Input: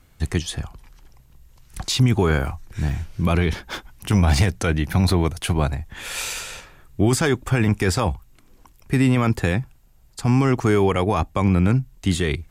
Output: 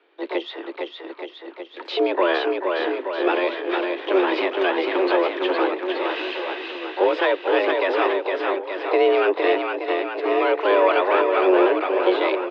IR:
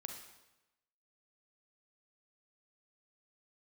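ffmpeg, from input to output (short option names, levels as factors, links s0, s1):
-filter_complex "[0:a]aecho=1:1:460|874|1247|1582|1884:0.631|0.398|0.251|0.158|0.1,asplit=2[s0][s1];[s1]asetrate=88200,aresample=44100,atempo=0.5,volume=0.447[s2];[s0][s2]amix=inputs=2:normalize=0,highpass=f=170:t=q:w=0.5412,highpass=f=170:t=q:w=1.307,lowpass=f=3400:t=q:w=0.5176,lowpass=f=3400:t=q:w=0.7071,lowpass=f=3400:t=q:w=1.932,afreqshift=180"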